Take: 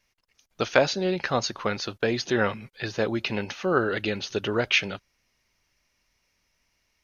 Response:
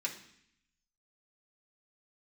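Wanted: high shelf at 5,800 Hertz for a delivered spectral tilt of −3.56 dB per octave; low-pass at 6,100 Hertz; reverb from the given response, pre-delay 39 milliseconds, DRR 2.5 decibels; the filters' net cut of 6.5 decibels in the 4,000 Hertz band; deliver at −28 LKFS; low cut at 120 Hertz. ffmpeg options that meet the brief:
-filter_complex "[0:a]highpass=120,lowpass=6100,equalizer=frequency=4000:width_type=o:gain=-5,highshelf=frequency=5800:gain=-8.5,asplit=2[link_01][link_02];[1:a]atrim=start_sample=2205,adelay=39[link_03];[link_02][link_03]afir=irnorm=-1:irlink=0,volume=-5dB[link_04];[link_01][link_04]amix=inputs=2:normalize=0,volume=-2dB"

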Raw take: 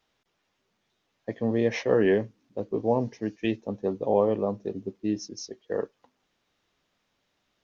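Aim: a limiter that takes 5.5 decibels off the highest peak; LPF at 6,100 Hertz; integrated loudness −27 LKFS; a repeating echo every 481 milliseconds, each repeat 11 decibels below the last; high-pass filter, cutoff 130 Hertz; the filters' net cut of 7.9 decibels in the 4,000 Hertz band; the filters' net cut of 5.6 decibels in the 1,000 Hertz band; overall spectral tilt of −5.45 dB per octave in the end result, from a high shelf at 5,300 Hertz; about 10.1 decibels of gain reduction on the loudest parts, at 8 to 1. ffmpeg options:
ffmpeg -i in.wav -af "highpass=130,lowpass=6100,equalizer=frequency=1000:width_type=o:gain=-7.5,equalizer=frequency=4000:width_type=o:gain=-5.5,highshelf=frequency=5300:gain=-9,acompressor=threshold=-29dB:ratio=8,alimiter=level_in=0.5dB:limit=-24dB:level=0:latency=1,volume=-0.5dB,aecho=1:1:481|962|1443:0.282|0.0789|0.0221,volume=10.5dB" out.wav

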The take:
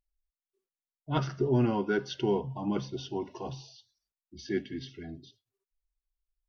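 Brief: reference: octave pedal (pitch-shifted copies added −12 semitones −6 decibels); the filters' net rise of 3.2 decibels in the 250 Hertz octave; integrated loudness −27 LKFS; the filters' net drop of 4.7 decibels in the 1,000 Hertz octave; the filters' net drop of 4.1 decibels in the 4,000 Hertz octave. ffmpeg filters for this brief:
ffmpeg -i in.wav -filter_complex "[0:a]equalizer=frequency=250:width_type=o:gain=4.5,equalizer=frequency=1000:width_type=o:gain=-6,equalizer=frequency=4000:width_type=o:gain=-5,asplit=2[link_01][link_02];[link_02]asetrate=22050,aresample=44100,atempo=2,volume=-6dB[link_03];[link_01][link_03]amix=inputs=2:normalize=0,volume=2.5dB" out.wav

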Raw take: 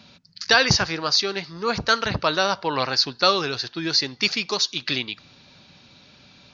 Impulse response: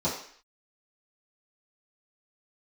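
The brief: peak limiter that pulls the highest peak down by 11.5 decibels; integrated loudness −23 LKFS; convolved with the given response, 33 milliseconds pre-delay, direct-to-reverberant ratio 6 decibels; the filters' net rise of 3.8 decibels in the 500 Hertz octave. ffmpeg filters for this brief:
-filter_complex "[0:a]equalizer=frequency=500:width_type=o:gain=4.5,alimiter=limit=-13dB:level=0:latency=1,asplit=2[link_01][link_02];[1:a]atrim=start_sample=2205,adelay=33[link_03];[link_02][link_03]afir=irnorm=-1:irlink=0,volume=-16dB[link_04];[link_01][link_04]amix=inputs=2:normalize=0,volume=0.5dB"

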